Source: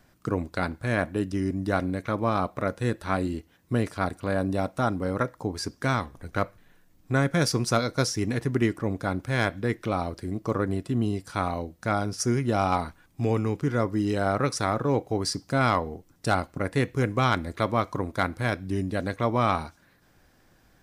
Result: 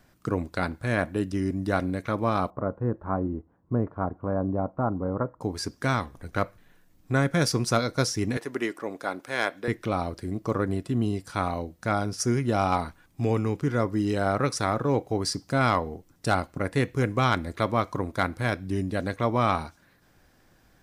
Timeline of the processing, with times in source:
0:02.50–0:05.41: Chebyshev low-pass filter 1,100 Hz, order 3
0:08.37–0:09.68: high-pass filter 390 Hz

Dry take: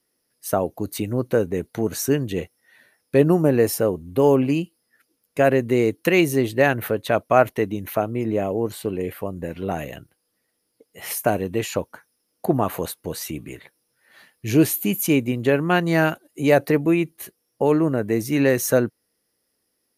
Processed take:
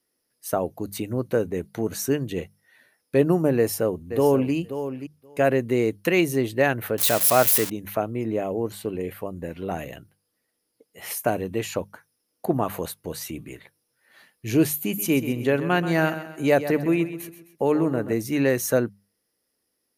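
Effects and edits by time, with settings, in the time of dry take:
0:03.57–0:04.53: delay throw 530 ms, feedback 10%, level −10.5 dB
0:06.98–0:07.70: spike at every zero crossing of −10 dBFS
0:14.83–0:18.13: repeating echo 130 ms, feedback 42%, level −12 dB
whole clip: mains-hum notches 50/100/150/200 Hz; level −3 dB

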